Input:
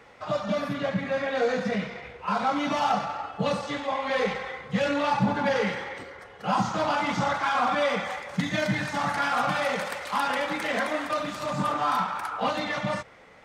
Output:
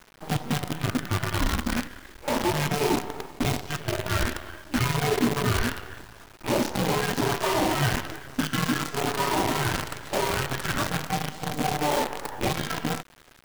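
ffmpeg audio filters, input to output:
ffmpeg -i in.wav -af "afreqshift=-440,acrusher=bits=5:dc=4:mix=0:aa=0.000001" out.wav

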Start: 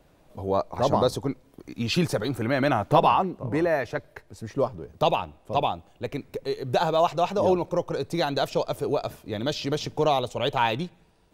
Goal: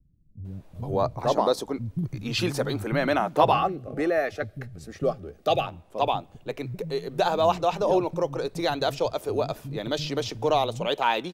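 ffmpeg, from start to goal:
ffmpeg -i in.wav -filter_complex "[0:a]asettb=1/sr,asplit=3[link_01][link_02][link_03];[link_01]atrim=end=3.074[link_04];[link_02]atrim=start=3.07:end=5.22,asetpts=PTS-STARTPTS,afade=type=in:duration=0.004:curve=qsin,afade=type=out:start_time=2.146:duration=0.004:curve=qsin,asuperstop=centerf=950:order=12:qfactor=3.9[link_05];[link_03]atrim=start=5.216[link_06];[link_04][link_05]acrossfade=duration=0.004:curve1=hsin:curve2=qsin[link_07];[link_07][link_06]acrossfade=duration=0.004:curve1=qsin:curve2=hsin,acrossover=split=200[link_08][link_09];[link_09]adelay=450[link_10];[link_08][link_10]amix=inputs=2:normalize=0" out.wav

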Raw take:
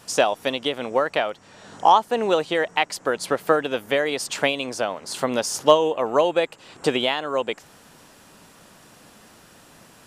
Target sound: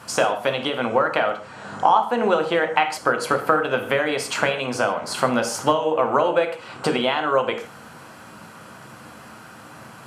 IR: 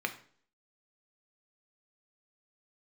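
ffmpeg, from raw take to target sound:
-filter_complex "[0:a]acompressor=threshold=-25dB:ratio=3[link_01];[1:a]atrim=start_sample=2205,atrim=end_sample=4410,asetrate=27342,aresample=44100[link_02];[link_01][link_02]afir=irnorm=-1:irlink=0,volume=1dB"

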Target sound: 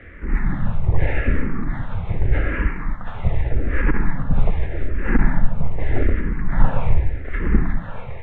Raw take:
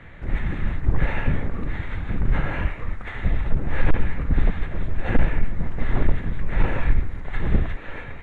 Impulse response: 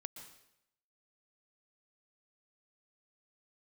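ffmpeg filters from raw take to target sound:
-filter_complex "[0:a]asplit=2[link_01][link_02];[1:a]atrim=start_sample=2205,lowpass=2800[link_03];[link_02][link_03]afir=irnorm=-1:irlink=0,volume=10.5dB[link_04];[link_01][link_04]amix=inputs=2:normalize=0,asplit=2[link_05][link_06];[link_06]afreqshift=-0.83[link_07];[link_05][link_07]amix=inputs=2:normalize=1,volume=-3.5dB"

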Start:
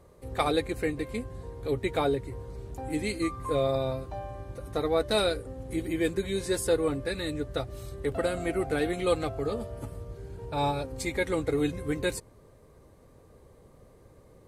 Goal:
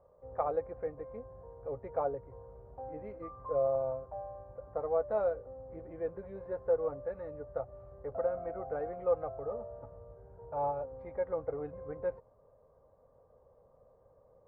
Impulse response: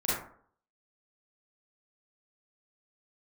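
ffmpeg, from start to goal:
-af "lowpass=frequency=1200:width=0.5412,lowpass=frequency=1200:width=1.3066,lowshelf=frequency=430:width_type=q:width=3:gain=-7,volume=-7dB"

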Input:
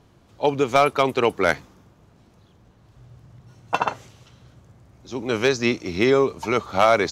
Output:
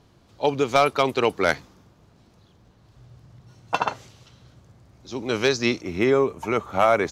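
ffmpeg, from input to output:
ffmpeg -i in.wav -af "asetnsamples=nb_out_samples=441:pad=0,asendcmd='5.81 equalizer g -11.5',equalizer=frequency=4500:width_type=o:width=0.77:gain=4.5,volume=-1.5dB" out.wav

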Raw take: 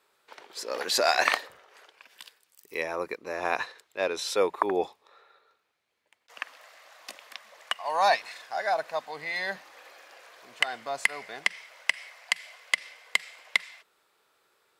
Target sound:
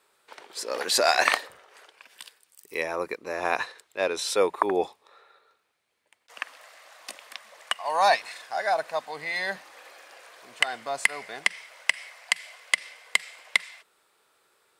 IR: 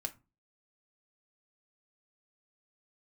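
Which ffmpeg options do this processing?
-af "equalizer=frequency=8900:width=3.1:gain=6.5,volume=2dB"

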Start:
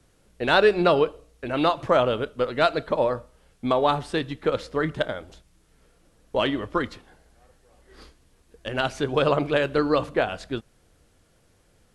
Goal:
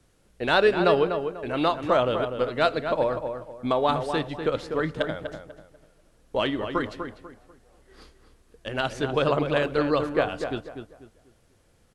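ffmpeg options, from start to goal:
ffmpeg -i in.wav -filter_complex "[0:a]asplit=2[link_01][link_02];[link_02]adelay=246,lowpass=frequency=2100:poles=1,volume=-7dB,asplit=2[link_03][link_04];[link_04]adelay=246,lowpass=frequency=2100:poles=1,volume=0.31,asplit=2[link_05][link_06];[link_06]adelay=246,lowpass=frequency=2100:poles=1,volume=0.31,asplit=2[link_07][link_08];[link_08]adelay=246,lowpass=frequency=2100:poles=1,volume=0.31[link_09];[link_01][link_03][link_05][link_07][link_09]amix=inputs=5:normalize=0,volume=-2dB" out.wav

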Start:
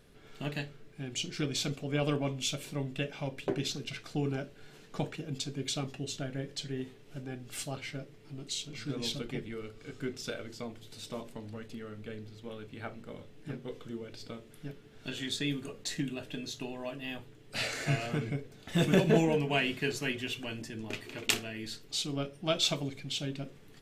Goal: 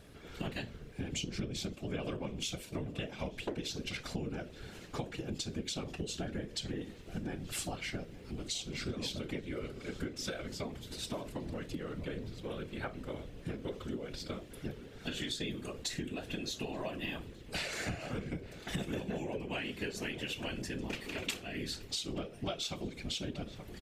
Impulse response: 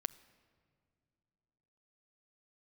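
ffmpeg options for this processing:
-filter_complex "[0:a]asettb=1/sr,asplit=3[link_01][link_02][link_03];[link_01]atrim=end=1.134[link_04];[link_02]atrim=start=1.13:end=1.69,asetpts=PTS-STARTPTS,afade=type=in:duration=0.004:curve=qsin,afade=type=out:start_time=0.556:duration=0.004:curve=qsin,lowshelf=frequency=430:gain=10[link_05];[link_03]atrim=start=1.686[link_06];[link_04][link_05]acrossfade=duration=0.004:curve1=hsin:curve2=qsin[link_07];[link_07][link_06]acrossfade=duration=0.004:curve1=qsin:curve2=hsin,asplit=3[link_08][link_09][link_10];[link_08]afade=type=out:start_time=2.59:duration=0.02[link_11];[link_09]agate=range=-33dB:threshold=-37dB:ratio=3:detection=peak,afade=type=in:start_time=2.59:duration=0.02,afade=type=out:start_time=3.18:duration=0.02[link_12];[link_10]afade=type=in:start_time=3.18:duration=0.02[link_13];[link_11][link_12][link_13]amix=inputs=3:normalize=0,afftfilt=real='hypot(re,im)*cos(2*PI*random(0))':imag='hypot(re,im)*sin(2*PI*random(1))':win_size=512:overlap=0.75,asplit=2[link_14][link_15];[link_15]adelay=874.6,volume=-20dB,highshelf=frequency=4000:gain=-19.7[link_16];[link_14][link_16]amix=inputs=2:normalize=0,acompressor=threshold=-45dB:ratio=12,volume=10.5dB"

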